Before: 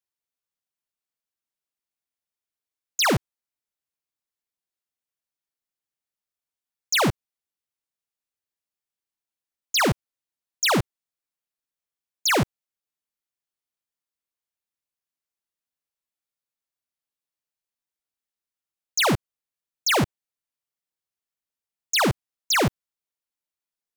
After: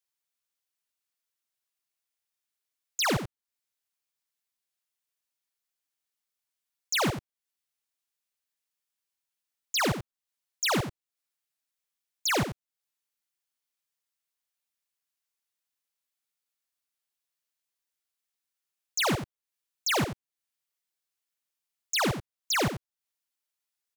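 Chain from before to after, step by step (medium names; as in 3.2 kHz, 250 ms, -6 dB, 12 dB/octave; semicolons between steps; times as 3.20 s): on a send: delay 88 ms -9.5 dB; on the sum: tape noise reduction on one side only encoder only; trim -6 dB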